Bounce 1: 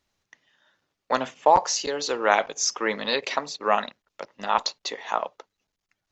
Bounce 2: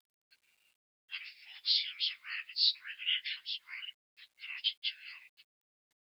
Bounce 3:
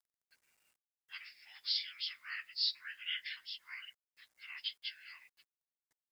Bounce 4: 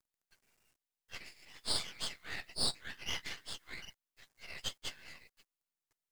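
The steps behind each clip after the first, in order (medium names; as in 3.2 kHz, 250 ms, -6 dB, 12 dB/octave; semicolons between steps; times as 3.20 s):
frequency axis rescaled in octaves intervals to 90%; steep high-pass 2.2 kHz 36 dB/octave; word length cut 12-bit, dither none
high-order bell 3.2 kHz -8.5 dB 1.1 oct; trim +1 dB
half-wave rectifier; trim +4.5 dB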